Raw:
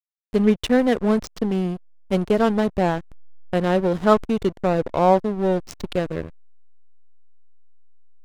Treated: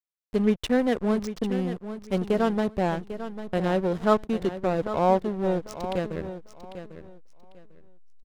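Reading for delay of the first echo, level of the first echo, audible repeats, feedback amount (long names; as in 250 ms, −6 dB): 797 ms, −11.5 dB, 2, 22%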